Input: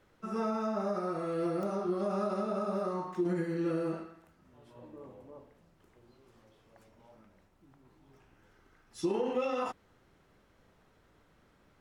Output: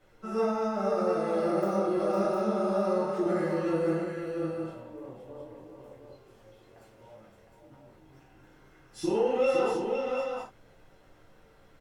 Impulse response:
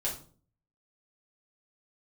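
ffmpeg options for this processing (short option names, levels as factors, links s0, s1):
-filter_complex "[0:a]bandreject=f=50:t=h:w=6,bandreject=f=100:t=h:w=6,bandreject=f=150:t=h:w=6,bandreject=f=200:t=h:w=6,aecho=1:1:95|509|710:0.224|0.447|0.473[s0];[1:a]atrim=start_sample=2205,atrim=end_sample=3528,asetrate=40572,aresample=44100[s1];[s0][s1]afir=irnorm=-1:irlink=0"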